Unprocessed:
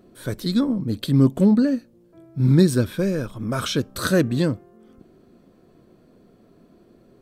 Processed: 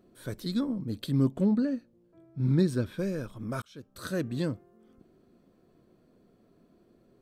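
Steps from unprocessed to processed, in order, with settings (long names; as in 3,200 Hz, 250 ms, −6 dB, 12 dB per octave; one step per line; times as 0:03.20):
0:01.29–0:02.98: high-shelf EQ 6,300 Hz −10 dB
0:03.62–0:04.48: fade in
level −9 dB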